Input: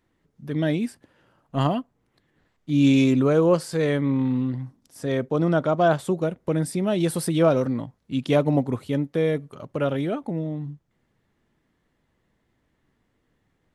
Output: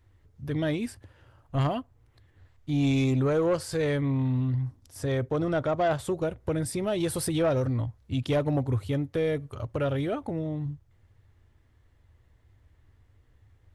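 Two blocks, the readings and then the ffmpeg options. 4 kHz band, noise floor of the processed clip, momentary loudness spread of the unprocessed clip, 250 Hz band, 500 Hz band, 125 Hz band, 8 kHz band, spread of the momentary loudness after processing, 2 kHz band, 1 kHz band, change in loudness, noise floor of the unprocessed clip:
-4.0 dB, -63 dBFS, 13 LU, -6.5 dB, -5.0 dB, -1.5 dB, -1.0 dB, 10 LU, -4.5 dB, -5.0 dB, -5.0 dB, -71 dBFS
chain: -filter_complex "[0:a]lowshelf=f=130:t=q:w=3:g=11,asplit=2[a][b];[b]acompressor=threshold=-28dB:ratio=6,volume=1dB[c];[a][c]amix=inputs=2:normalize=0,asoftclip=type=tanh:threshold=-12dB,volume=-5.5dB"

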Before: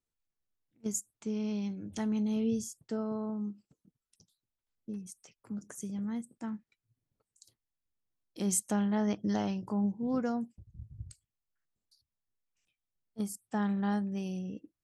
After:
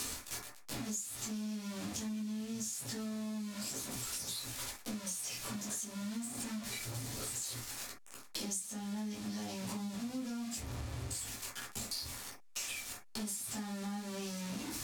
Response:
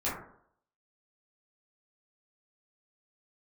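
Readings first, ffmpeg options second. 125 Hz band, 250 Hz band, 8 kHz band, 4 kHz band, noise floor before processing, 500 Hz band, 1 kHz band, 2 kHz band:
-4.5 dB, -7.5 dB, +3.0 dB, +10.5 dB, under -85 dBFS, -9.5 dB, -6.0 dB, +2.5 dB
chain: -filter_complex "[0:a]aeval=exprs='val(0)+0.5*0.0282*sgn(val(0))':c=same,lowpass=7.1k,acrossover=split=200|3000[a][b][c];[b]acompressor=threshold=-55dB:ratio=2[d];[a][d][c]amix=inputs=3:normalize=0,aemphasis=mode=production:type=bsi[e];[1:a]atrim=start_sample=2205,atrim=end_sample=3969[f];[e][f]afir=irnorm=-1:irlink=0,acompressor=threshold=-42dB:ratio=8,volume=4dB"

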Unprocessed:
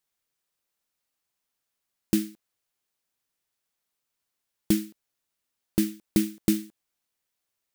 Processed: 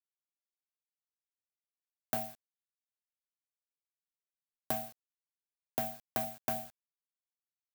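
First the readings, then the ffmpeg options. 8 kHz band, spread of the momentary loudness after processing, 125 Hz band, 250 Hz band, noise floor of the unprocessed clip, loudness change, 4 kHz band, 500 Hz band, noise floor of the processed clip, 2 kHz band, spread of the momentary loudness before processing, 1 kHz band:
-10.5 dB, 8 LU, -15.0 dB, -21.5 dB, -83 dBFS, -9.5 dB, -11.0 dB, -5.0 dB, under -85 dBFS, -3.5 dB, 4 LU, n/a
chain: -filter_complex "[0:a]aeval=exprs='val(0)*sin(2*PI*440*n/s)':c=same,aemphasis=mode=production:type=bsi,asoftclip=type=tanh:threshold=-15.5dB,acrossover=split=230|2800[a][b][c];[a]acompressor=threshold=-46dB:ratio=4[d];[b]acompressor=threshold=-34dB:ratio=4[e];[c]acompressor=threshold=-39dB:ratio=4[f];[d][e][f]amix=inputs=3:normalize=0,aeval=exprs='val(0)*gte(abs(val(0)),0.00316)':c=same"

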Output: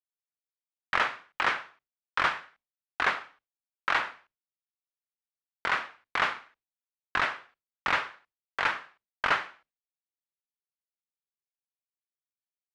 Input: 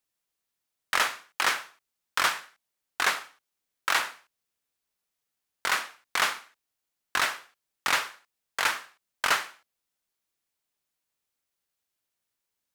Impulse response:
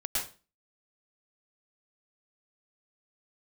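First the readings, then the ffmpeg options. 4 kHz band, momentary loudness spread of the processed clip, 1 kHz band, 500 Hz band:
-6.5 dB, 11 LU, 0.0 dB, +0.5 dB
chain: -af "lowpass=2.6k,agate=range=-33dB:threshold=-57dB:ratio=3:detection=peak,lowshelf=f=140:g=8"

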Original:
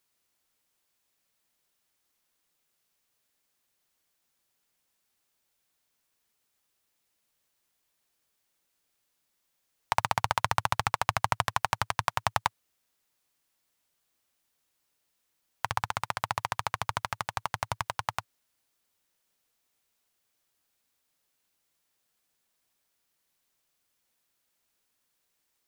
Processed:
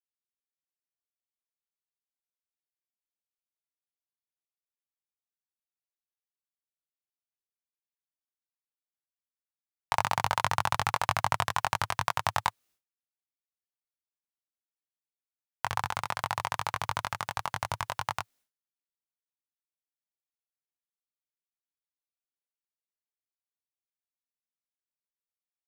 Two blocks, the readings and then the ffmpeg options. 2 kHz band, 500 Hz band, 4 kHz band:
0.0 dB, 0.0 dB, 0.0 dB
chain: -filter_complex "[0:a]agate=range=-33dB:threshold=-59dB:ratio=3:detection=peak,asplit=2[a][b];[b]adelay=21,volume=-2.5dB[c];[a][c]amix=inputs=2:normalize=0,volume=-2dB"

